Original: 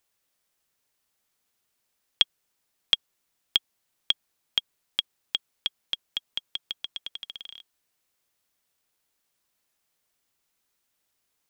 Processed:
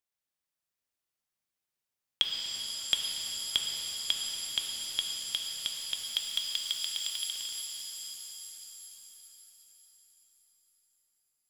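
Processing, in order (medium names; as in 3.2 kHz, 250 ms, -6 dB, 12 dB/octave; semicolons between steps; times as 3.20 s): 6.04–7.31 s: RIAA curve recording; gate -54 dBFS, range -13 dB; in parallel at -1.5 dB: compression, threshold -35 dBFS, peak gain reduction 19.5 dB; on the sum: pitch-shifted reverb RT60 3.9 s, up +7 st, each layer -2 dB, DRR 1 dB; trim -7.5 dB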